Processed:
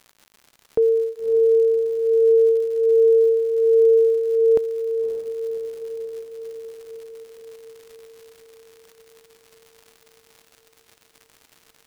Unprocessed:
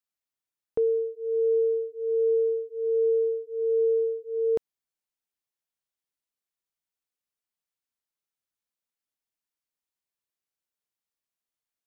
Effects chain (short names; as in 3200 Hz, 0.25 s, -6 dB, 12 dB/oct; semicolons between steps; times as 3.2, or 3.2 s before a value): crackle 160/s -43 dBFS; diffused feedback echo 0.575 s, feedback 66%, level -10 dB; gain +6.5 dB